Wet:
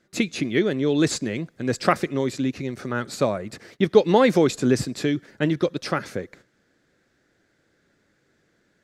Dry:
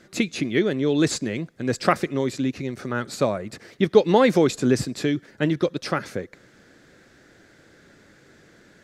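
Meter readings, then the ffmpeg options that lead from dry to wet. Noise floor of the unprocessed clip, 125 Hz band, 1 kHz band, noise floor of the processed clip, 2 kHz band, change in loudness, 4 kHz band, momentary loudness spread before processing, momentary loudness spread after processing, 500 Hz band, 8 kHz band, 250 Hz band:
−55 dBFS, 0.0 dB, 0.0 dB, −67 dBFS, 0.0 dB, 0.0 dB, 0.0 dB, 12 LU, 12 LU, 0.0 dB, 0.0 dB, 0.0 dB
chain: -af "agate=range=-13dB:threshold=-48dB:ratio=16:detection=peak"

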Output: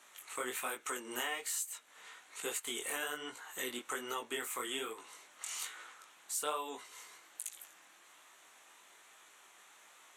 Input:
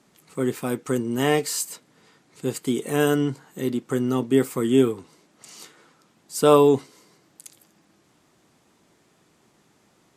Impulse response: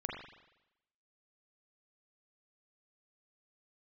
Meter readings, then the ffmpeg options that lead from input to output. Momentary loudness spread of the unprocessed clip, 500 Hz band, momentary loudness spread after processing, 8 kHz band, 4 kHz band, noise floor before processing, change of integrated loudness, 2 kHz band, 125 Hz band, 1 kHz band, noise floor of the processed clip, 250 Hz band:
14 LU, −23.0 dB, 22 LU, −5.5 dB, −7.0 dB, −63 dBFS, −17.0 dB, −6.5 dB, −39.0 dB, −13.0 dB, −62 dBFS, −27.0 dB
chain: -af "highpass=1100,equalizer=frequency=4900:width_type=o:width=0.28:gain=-13.5,acompressor=threshold=-43dB:ratio=6,flanger=delay=17.5:depth=7:speed=1.2,volume=10dB" -ar 44100 -c:a nellymoser

